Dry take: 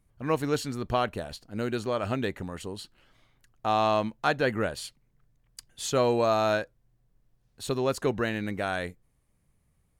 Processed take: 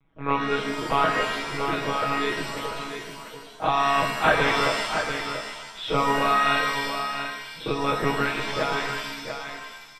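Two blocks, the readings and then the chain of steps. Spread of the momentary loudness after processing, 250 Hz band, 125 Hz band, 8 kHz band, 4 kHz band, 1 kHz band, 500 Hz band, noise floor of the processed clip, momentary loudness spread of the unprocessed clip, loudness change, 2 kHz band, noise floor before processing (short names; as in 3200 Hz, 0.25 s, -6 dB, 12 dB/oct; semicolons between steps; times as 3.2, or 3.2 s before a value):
13 LU, +1.0 dB, 0.0 dB, +2.0 dB, +9.0 dB, +7.0 dB, +0.5 dB, -44 dBFS, 15 LU, +4.0 dB, +9.5 dB, -71 dBFS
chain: spectral dilation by 60 ms; monotone LPC vocoder at 8 kHz 140 Hz; comb 6.3 ms, depth 75%; on a send: echo 0.688 s -8 dB; on the sum: reverb removal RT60 0.75 s; low shelf 130 Hz -11.5 dB; in parallel at -9 dB: soft clip -15.5 dBFS, distortion -17 dB; on the sum: shimmer reverb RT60 1.1 s, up +7 st, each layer -2 dB, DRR 4.5 dB; gain -1.5 dB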